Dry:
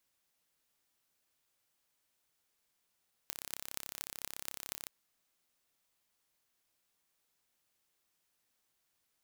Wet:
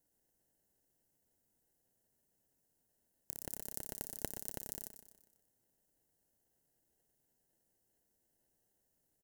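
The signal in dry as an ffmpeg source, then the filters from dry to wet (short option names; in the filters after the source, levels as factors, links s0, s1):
-f lavfi -i "aevalsrc='0.335*eq(mod(n,1305),0)*(0.5+0.5*eq(mod(n,10440),0))':d=1.57:s=44100"
-filter_complex "[0:a]lowshelf=f=310:g=-8,acrossover=split=140|5700[s0][s1][s2];[s1]acrusher=samples=37:mix=1:aa=0.000001[s3];[s0][s3][s2]amix=inputs=3:normalize=0,aecho=1:1:123|246|369|492|615:0.282|0.138|0.0677|0.0332|0.0162"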